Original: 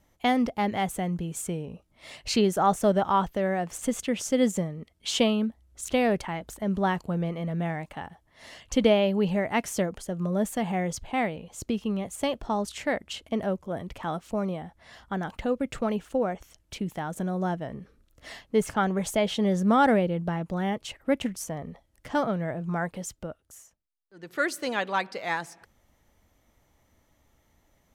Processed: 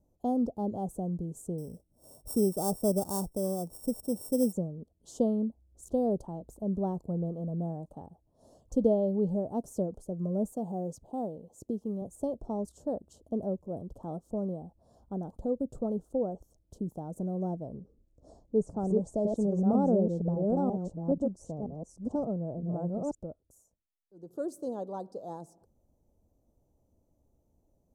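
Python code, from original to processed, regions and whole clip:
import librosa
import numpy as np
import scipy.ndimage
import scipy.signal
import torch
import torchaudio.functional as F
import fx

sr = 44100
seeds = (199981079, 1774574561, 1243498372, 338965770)

y = fx.chain(x, sr, fx.sample_sort(block=16),
    fx.high_shelf(hz=5900.0, db=11.5),
    fx.notch(hz=2700.0, q=15.0), at=(1.58, 4.53))
y = fx.chain(y, sr, fx.highpass(hz=190.0, slope=6),
    fx.quant_companded(bits=8), at=(10.53, 12.02))
y = fx.chain(y, sr, fx.reverse_delay(ms=483, wet_db=-2.0),
    fx.lowpass(hz=8000.0, slope=24),
    fx.peak_eq(hz=2700.0, db=-12.0, octaves=1.1), at=(17.8, 23.15))
y = scipy.signal.sosfilt(scipy.signal.cheby1(2, 1.0, [540.0, 8000.0], 'bandstop', fs=sr, output='sos'), y)
y = fx.high_shelf(y, sr, hz=3800.0, db=-11.5)
y = y * librosa.db_to_amplitude(-3.0)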